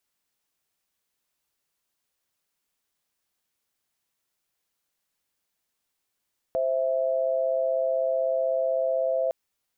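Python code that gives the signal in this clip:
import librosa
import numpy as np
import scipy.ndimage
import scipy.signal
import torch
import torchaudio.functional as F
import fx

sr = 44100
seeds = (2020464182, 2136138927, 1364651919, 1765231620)

y = fx.chord(sr, length_s=2.76, notes=(72, 76), wave='sine', level_db=-25.0)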